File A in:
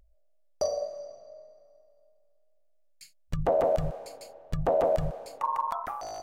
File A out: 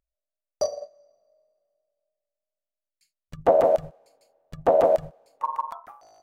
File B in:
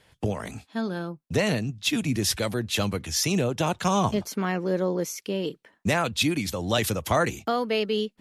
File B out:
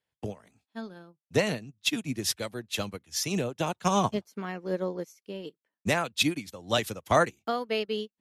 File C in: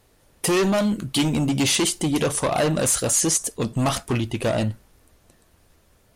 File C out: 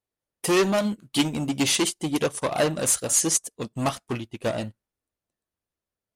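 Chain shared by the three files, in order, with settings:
low shelf 77 Hz -10.5 dB; upward expander 2.5:1, over -39 dBFS; normalise peaks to -9 dBFS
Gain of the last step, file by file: +9.0, +2.0, +1.5 dB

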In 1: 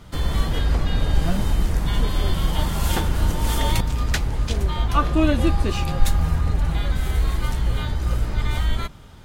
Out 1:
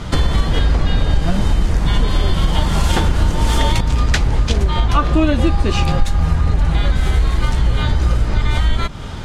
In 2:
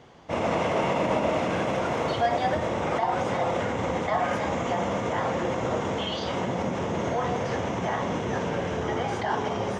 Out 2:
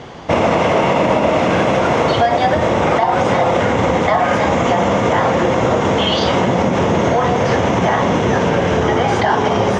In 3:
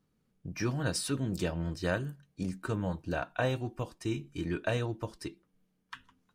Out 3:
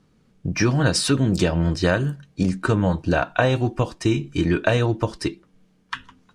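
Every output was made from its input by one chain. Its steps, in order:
LPF 7700 Hz 12 dB/oct; compressor 4:1, threshold -30 dBFS; normalise peaks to -2 dBFS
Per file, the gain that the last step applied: +17.0, +18.0, +15.5 dB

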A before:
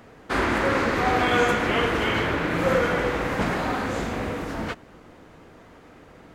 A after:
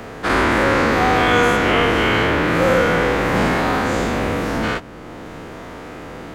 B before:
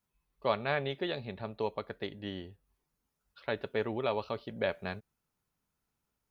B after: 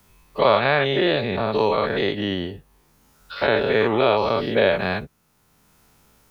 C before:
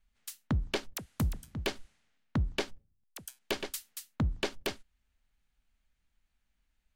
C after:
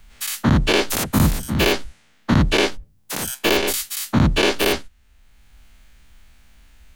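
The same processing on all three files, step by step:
spectral dilation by 0.12 s; three-band squash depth 40%; normalise peaks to -3 dBFS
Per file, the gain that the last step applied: +2.0, +9.5, +9.5 dB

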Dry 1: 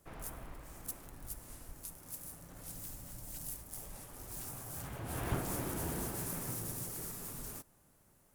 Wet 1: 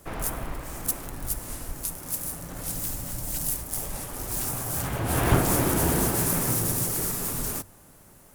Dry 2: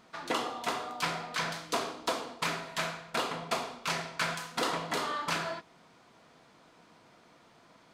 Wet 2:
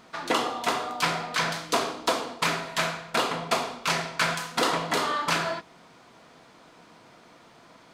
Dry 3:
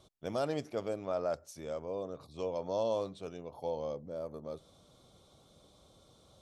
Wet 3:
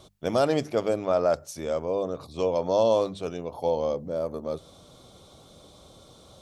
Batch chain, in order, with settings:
notches 50/100/150/200 Hz; match loudness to -27 LUFS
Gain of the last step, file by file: +15.0, +6.5, +11.0 dB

